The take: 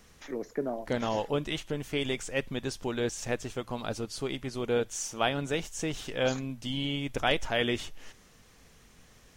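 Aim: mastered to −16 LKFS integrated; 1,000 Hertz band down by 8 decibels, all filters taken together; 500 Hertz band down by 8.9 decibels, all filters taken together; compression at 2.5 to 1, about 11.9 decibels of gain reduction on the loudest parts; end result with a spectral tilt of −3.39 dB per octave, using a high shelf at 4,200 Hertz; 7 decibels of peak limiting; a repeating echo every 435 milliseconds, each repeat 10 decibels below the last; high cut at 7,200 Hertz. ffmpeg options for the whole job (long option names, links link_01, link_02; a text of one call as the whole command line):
ffmpeg -i in.wav -af "lowpass=7200,equalizer=frequency=500:width_type=o:gain=-9,equalizer=frequency=1000:width_type=o:gain=-8,highshelf=frequency=4200:gain=6,acompressor=threshold=-43dB:ratio=2.5,alimiter=level_in=9dB:limit=-24dB:level=0:latency=1,volume=-9dB,aecho=1:1:435|870|1305|1740:0.316|0.101|0.0324|0.0104,volume=28.5dB" out.wav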